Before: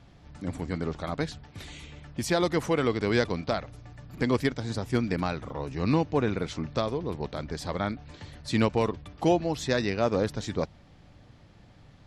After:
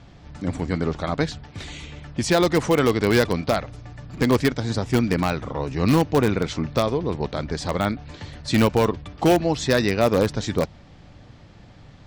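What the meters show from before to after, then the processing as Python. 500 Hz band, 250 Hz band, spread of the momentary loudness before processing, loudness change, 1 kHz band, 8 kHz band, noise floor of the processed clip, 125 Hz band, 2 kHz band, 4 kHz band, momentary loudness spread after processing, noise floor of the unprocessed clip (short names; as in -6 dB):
+6.5 dB, +6.5 dB, 15 LU, +6.5 dB, +6.5 dB, +8.0 dB, -47 dBFS, +7.0 dB, +6.5 dB, +7.0 dB, 14 LU, -54 dBFS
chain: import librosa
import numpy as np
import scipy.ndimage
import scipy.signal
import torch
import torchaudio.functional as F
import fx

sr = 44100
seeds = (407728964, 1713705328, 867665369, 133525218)

p1 = scipy.signal.sosfilt(scipy.signal.butter(4, 8600.0, 'lowpass', fs=sr, output='sos'), x)
p2 = (np.mod(10.0 ** (16.5 / 20.0) * p1 + 1.0, 2.0) - 1.0) / 10.0 ** (16.5 / 20.0)
p3 = p1 + F.gain(torch.from_numpy(p2), -11.0).numpy()
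y = F.gain(torch.from_numpy(p3), 5.0).numpy()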